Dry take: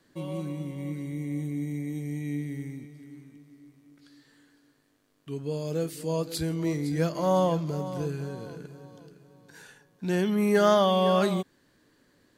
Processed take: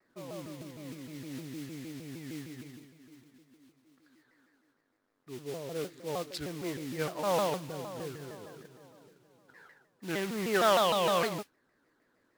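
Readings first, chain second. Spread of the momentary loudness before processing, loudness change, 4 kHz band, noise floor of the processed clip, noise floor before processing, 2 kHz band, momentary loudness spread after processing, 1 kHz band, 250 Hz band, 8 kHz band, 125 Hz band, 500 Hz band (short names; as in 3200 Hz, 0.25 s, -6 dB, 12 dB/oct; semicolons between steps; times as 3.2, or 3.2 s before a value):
18 LU, -5.5 dB, -0.5 dB, -74 dBFS, -66 dBFS, 0.0 dB, 20 LU, -2.5 dB, -10.5 dB, 0.0 dB, -12.5 dB, -5.5 dB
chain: Wiener smoothing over 15 samples; tone controls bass -7 dB, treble -6 dB; modulation noise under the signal 16 dB; bell 2900 Hz +10 dB 2.9 oct; shaped vibrato saw down 6.5 Hz, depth 250 cents; gain -7 dB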